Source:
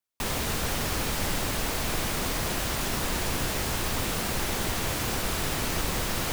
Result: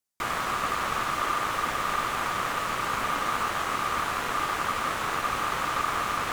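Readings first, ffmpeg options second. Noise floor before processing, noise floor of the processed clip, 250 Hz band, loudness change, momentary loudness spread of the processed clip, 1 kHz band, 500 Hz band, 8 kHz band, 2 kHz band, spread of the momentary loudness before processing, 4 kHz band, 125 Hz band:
-30 dBFS, -32 dBFS, -6.0 dB, +0.5 dB, 1 LU, +8.5 dB, -2.0 dB, -7.5 dB, +3.0 dB, 0 LU, -3.5 dB, -10.0 dB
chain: -filter_complex "[0:a]aemphasis=mode=reproduction:type=50kf,acrossover=split=3900[a][b];[b]acompressor=threshold=-57dB:ratio=4:attack=1:release=60[c];[a][c]amix=inputs=2:normalize=0,highshelf=f=5k:g=-7.5,aexciter=amount=6.4:drive=6.7:freq=5.4k,aeval=exprs='val(0)*sin(2*PI*1200*n/s)':c=same,volume=4.5dB"

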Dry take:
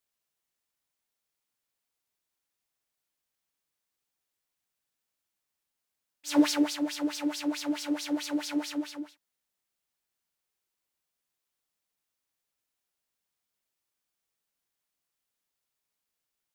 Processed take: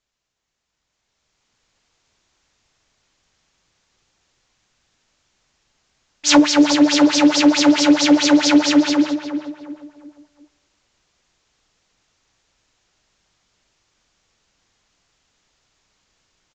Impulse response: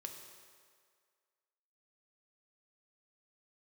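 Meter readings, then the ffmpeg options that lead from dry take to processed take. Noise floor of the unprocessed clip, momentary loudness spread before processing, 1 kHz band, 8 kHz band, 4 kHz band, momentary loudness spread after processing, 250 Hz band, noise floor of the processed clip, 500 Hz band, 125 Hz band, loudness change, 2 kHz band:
under -85 dBFS, 14 LU, +18.0 dB, +17.0 dB, +18.0 dB, 11 LU, +16.0 dB, -76 dBFS, +17.5 dB, n/a, +15.5 dB, +18.0 dB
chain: -filter_complex "[0:a]aresample=16000,aresample=44100,acompressor=threshold=-32dB:ratio=8,lowshelf=f=110:g=11,asplit=2[a][b];[b]adelay=355,lowpass=f=1.9k:p=1,volume=-8dB,asplit=2[c][d];[d]adelay=355,lowpass=f=1.9k:p=1,volume=0.38,asplit=2[e][f];[f]adelay=355,lowpass=f=1.9k:p=1,volume=0.38,asplit=2[g][h];[h]adelay=355,lowpass=f=1.9k:p=1,volume=0.38[i];[a][c][e][g][i]amix=inputs=5:normalize=0,asplit=2[j][k];[1:a]atrim=start_sample=2205[l];[k][l]afir=irnorm=-1:irlink=0,volume=-13.5dB[m];[j][m]amix=inputs=2:normalize=0,dynaudnorm=f=230:g=11:m=13dB,volume=8dB"

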